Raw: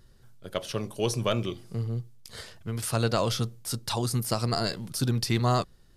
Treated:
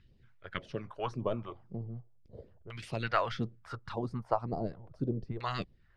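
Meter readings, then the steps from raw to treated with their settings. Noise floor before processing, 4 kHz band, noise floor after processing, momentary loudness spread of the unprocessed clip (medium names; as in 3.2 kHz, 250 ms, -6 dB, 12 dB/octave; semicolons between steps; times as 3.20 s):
-56 dBFS, -14.5 dB, -63 dBFS, 11 LU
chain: harmonic-percussive split harmonic -12 dB; LFO low-pass saw down 0.37 Hz 440–2600 Hz; phase shifter stages 2, 1.8 Hz, lowest notch 200–1500 Hz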